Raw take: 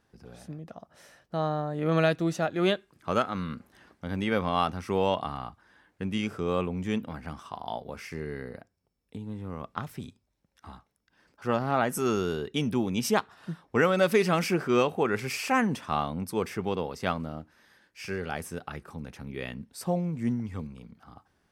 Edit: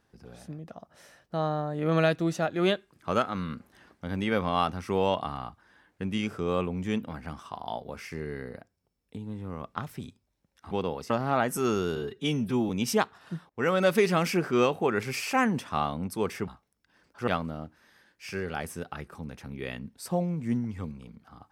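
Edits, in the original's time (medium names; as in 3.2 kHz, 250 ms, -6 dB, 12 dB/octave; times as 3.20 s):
10.71–11.51 s: swap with 16.64–17.03 s
12.37–12.86 s: stretch 1.5×
13.66–13.92 s: fade in, from -24 dB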